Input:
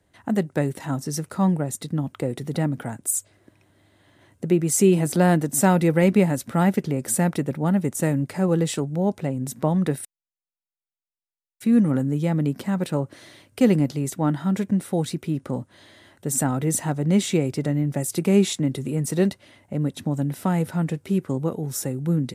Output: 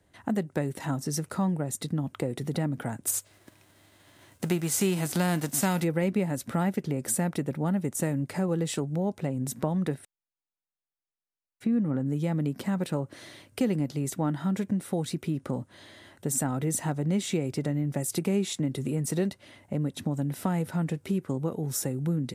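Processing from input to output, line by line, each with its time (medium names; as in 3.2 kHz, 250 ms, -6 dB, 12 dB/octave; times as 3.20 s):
3.06–5.83 s: formants flattened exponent 0.6
9.94–12.06 s: low-pass 1.8 kHz 6 dB/octave
whole clip: compression 2.5:1, threshold -27 dBFS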